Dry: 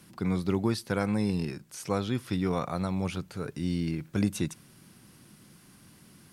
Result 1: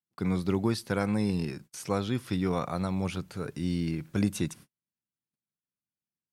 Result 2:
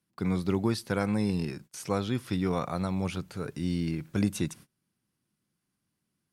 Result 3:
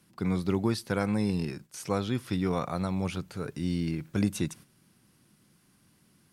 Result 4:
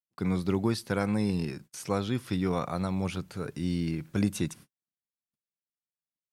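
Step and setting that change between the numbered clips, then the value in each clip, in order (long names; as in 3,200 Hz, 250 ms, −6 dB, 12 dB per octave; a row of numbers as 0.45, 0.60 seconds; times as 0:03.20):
noise gate, range: −46, −26, −9, −59 decibels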